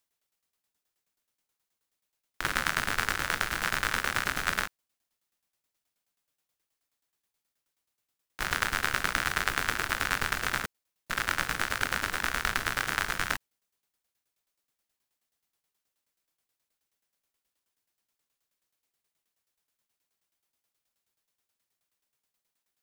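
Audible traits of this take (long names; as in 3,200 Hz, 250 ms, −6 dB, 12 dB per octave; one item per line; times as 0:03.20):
tremolo saw down 9.4 Hz, depth 80%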